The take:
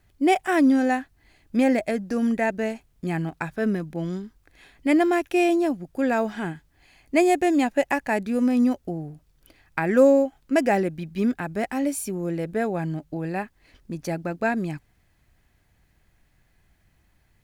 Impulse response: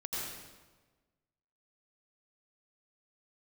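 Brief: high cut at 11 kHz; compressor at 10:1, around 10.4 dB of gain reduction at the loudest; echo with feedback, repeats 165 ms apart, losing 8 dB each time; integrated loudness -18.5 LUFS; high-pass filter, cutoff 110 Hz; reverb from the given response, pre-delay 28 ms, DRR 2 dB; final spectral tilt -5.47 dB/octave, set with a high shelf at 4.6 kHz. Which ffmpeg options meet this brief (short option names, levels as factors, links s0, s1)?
-filter_complex "[0:a]highpass=110,lowpass=11000,highshelf=f=4600:g=8.5,acompressor=threshold=0.0794:ratio=10,aecho=1:1:165|330|495|660|825:0.398|0.159|0.0637|0.0255|0.0102,asplit=2[s0][s1];[1:a]atrim=start_sample=2205,adelay=28[s2];[s1][s2]afir=irnorm=-1:irlink=0,volume=0.562[s3];[s0][s3]amix=inputs=2:normalize=0,volume=2.37"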